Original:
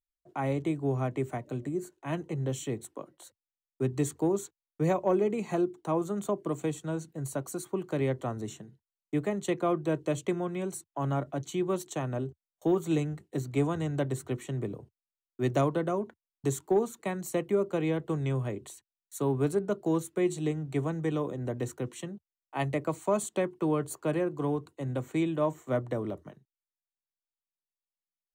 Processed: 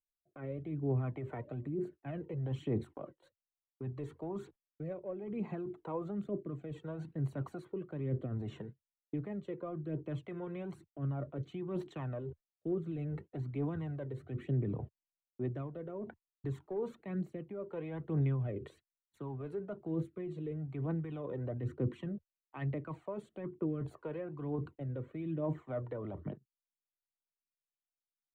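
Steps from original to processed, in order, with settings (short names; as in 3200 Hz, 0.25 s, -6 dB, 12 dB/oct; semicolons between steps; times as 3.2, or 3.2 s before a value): gate -49 dBFS, range -19 dB; reverse; compressor 12:1, threshold -38 dBFS, peak gain reduction 17.5 dB; reverse; limiter -38.5 dBFS, peak gain reduction 9.5 dB; rotary speaker horn 0.65 Hz; phaser 1.1 Hz, delay 2.3 ms, feedback 50%; air absorption 490 m; gain +9 dB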